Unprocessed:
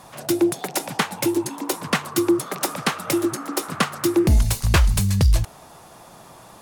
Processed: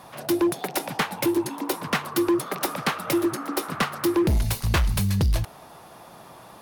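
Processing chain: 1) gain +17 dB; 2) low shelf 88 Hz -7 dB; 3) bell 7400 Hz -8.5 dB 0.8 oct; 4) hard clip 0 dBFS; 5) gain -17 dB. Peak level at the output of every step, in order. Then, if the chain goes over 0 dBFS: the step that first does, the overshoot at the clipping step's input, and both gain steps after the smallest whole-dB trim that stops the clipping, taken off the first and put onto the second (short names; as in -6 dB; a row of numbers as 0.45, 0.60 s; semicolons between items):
+9.5, +9.5, +9.5, 0.0, -17.0 dBFS; step 1, 9.5 dB; step 1 +7 dB, step 5 -7 dB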